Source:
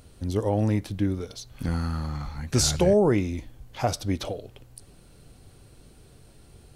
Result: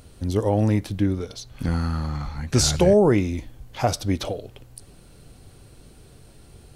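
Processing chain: 1.02–2.74 s: treble shelf 10 kHz -6 dB; trim +3.5 dB

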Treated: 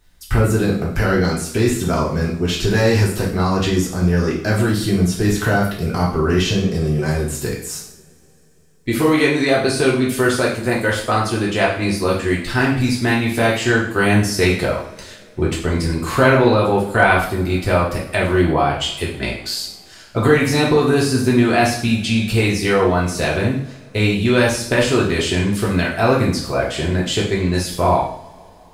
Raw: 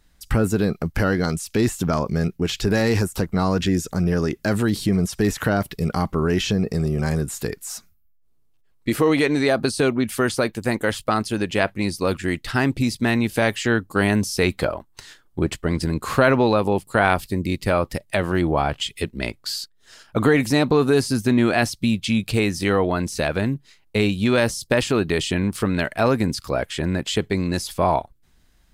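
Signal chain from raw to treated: two-slope reverb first 0.57 s, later 3.7 s, from -27 dB, DRR -4.5 dB; word length cut 12-bit, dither none; trim -1 dB

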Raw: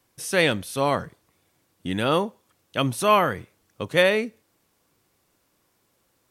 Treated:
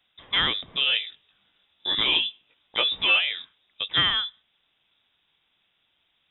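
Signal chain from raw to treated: 0.85–3.20 s: doubling 18 ms -2 dB; frequency inversion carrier 3.7 kHz; compression 2:1, threshold -21 dBFS, peak gain reduction 6.5 dB

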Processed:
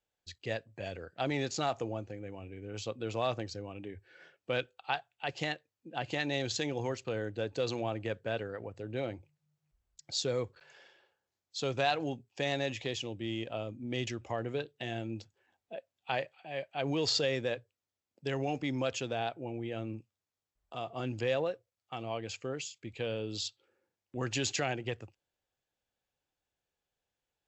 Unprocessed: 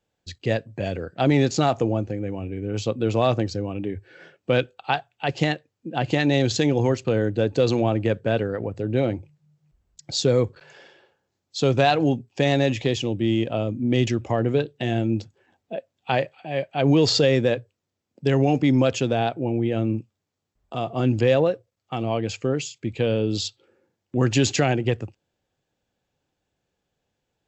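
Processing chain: peaking EQ 180 Hz -9.5 dB 2.9 oct; trim -8 dB

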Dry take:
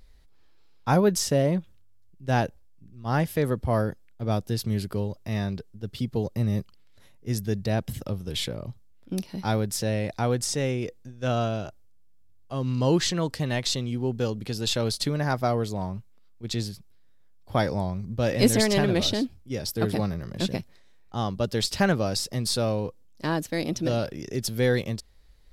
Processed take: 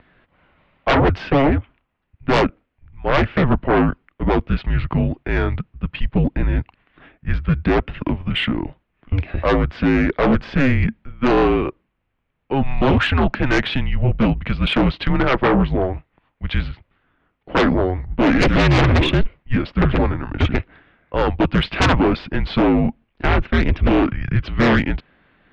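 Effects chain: mistuned SSB -270 Hz 240–2900 Hz; sine folder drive 13 dB, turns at -10.5 dBFS

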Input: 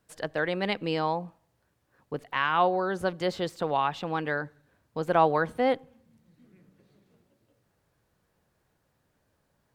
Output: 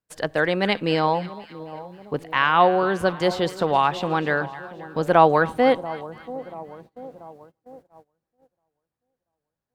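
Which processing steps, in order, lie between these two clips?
two-band feedback delay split 980 Hz, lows 685 ms, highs 264 ms, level -15.5 dB; gate -52 dBFS, range -24 dB; trim +7 dB

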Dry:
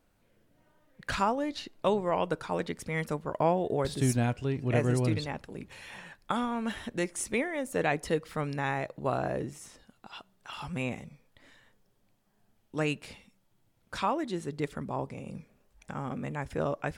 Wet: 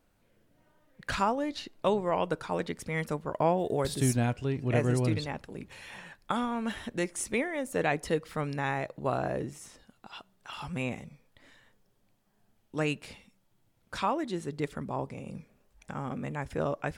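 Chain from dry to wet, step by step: 3.58–4.08 s: treble shelf 5.2 kHz -> 10 kHz +11 dB

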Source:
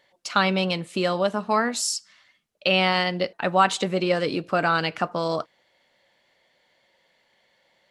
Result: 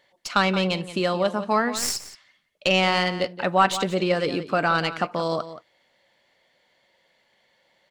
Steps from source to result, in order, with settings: tracing distortion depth 0.026 ms; echo from a far wall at 30 m, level -13 dB

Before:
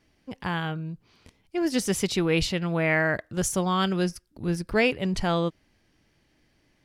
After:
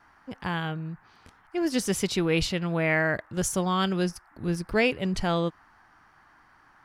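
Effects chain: band noise 740–1800 Hz -58 dBFS; trim -1 dB

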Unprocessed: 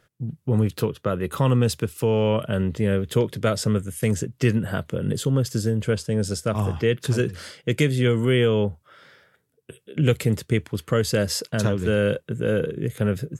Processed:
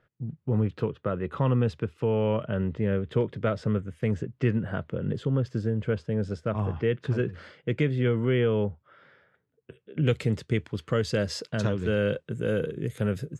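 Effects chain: low-pass 2.3 kHz 12 dB/octave, from 10.07 s 5.2 kHz, from 12.29 s 9.7 kHz; trim -4.5 dB

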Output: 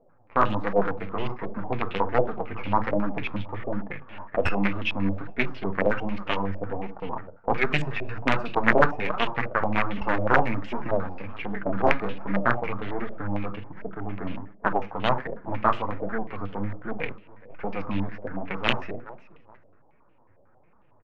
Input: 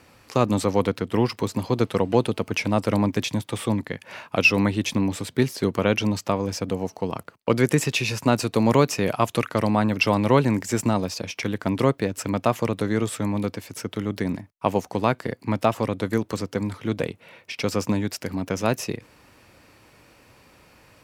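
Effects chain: partial rectifier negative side -12 dB; in parallel at -8.5 dB: companded quantiser 2-bit; on the sum: level-controlled noise filter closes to 970 Hz, open at -15.5 dBFS; 11.52–12.43 s: doubling 26 ms -5 dB; feedback delay 418 ms, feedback 25%, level -20 dB; on a send at -10.5 dB: reverberation RT60 0.35 s, pre-delay 20 ms; on the sum: flange 1.3 Hz, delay 4.1 ms, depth 7.5 ms, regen -5%; integer overflow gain 4.5 dB; step-sequenced low-pass 11 Hz 620–2900 Hz; trim -4.5 dB

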